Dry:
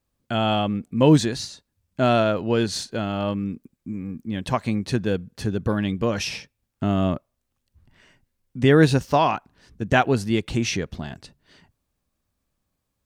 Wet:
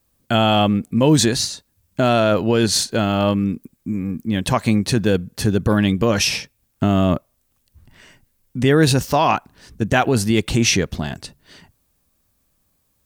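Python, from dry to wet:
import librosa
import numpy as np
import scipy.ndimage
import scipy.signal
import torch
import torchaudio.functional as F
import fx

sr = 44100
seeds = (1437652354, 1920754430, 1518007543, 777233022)

p1 = fx.high_shelf(x, sr, hz=8100.0, db=11.5)
p2 = fx.over_compress(p1, sr, threshold_db=-22.0, ratio=-0.5)
y = p1 + (p2 * 10.0 ** (0.0 / 20.0))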